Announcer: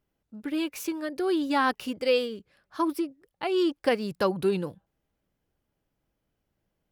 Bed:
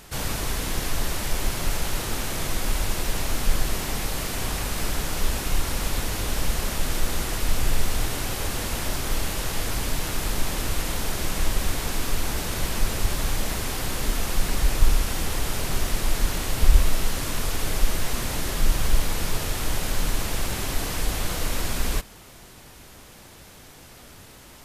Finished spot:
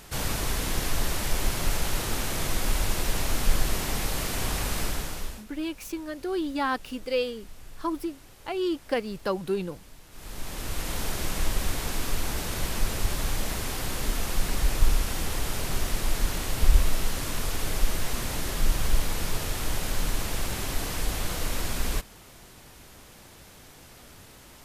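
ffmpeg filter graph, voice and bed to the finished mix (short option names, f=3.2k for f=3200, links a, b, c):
-filter_complex "[0:a]adelay=5050,volume=-3dB[a];[1:a]volume=19.5dB,afade=t=out:st=4.74:d=0.71:silence=0.0749894,afade=t=in:st=10.1:d=0.91:silence=0.0944061[b];[a][b]amix=inputs=2:normalize=0"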